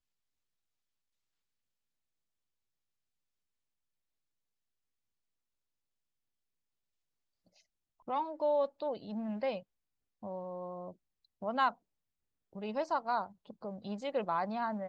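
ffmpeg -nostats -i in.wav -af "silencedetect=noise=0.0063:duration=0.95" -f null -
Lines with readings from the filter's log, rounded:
silence_start: 0.00
silence_end: 8.08 | silence_duration: 8.08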